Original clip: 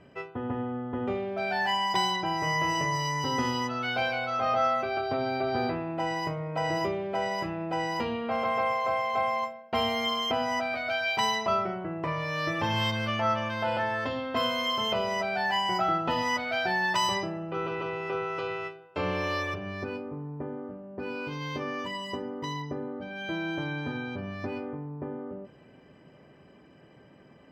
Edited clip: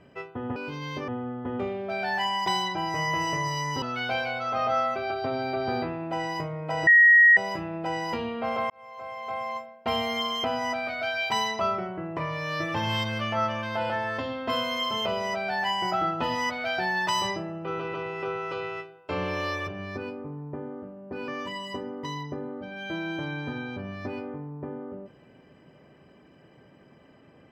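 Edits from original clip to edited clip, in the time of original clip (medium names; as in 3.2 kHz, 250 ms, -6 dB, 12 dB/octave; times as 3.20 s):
3.30–3.69 s: delete
6.74–7.24 s: bleep 1.89 kHz -12 dBFS
8.57–9.78 s: fade in
21.15–21.67 s: move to 0.56 s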